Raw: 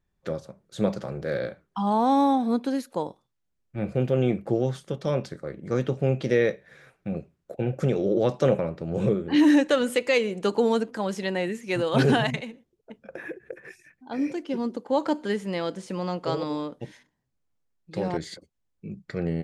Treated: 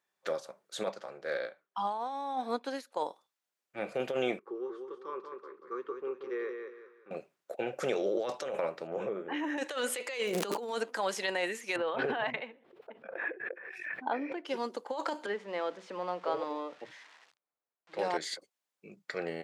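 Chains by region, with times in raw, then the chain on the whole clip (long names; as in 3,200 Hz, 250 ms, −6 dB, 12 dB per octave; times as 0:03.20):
0:00.88–0:02.97: high-shelf EQ 9,600 Hz −10.5 dB + expander for the loud parts, over −37 dBFS
0:04.39–0:07.11: pair of resonant band-passes 660 Hz, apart 1.5 octaves + repeating echo 185 ms, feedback 32%, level −6 dB
0:08.87–0:09.58: moving average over 10 samples + downward compressor, threshold −23 dBFS
0:10.26–0:10.69: low-shelf EQ 360 Hz +11 dB + surface crackle 160 per second −35 dBFS + envelope flattener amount 70%
0:11.76–0:14.45: high-frequency loss of the air 480 metres + background raised ahead of every attack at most 52 dB per second
0:15.26–0:17.99: spike at every zero crossing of −29.5 dBFS + head-to-tape spacing loss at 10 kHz 39 dB + multiband delay without the direct sound highs, lows 50 ms, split 150 Hz
whole clip: high-pass filter 640 Hz 12 dB per octave; compressor whose output falls as the input rises −32 dBFS, ratio −1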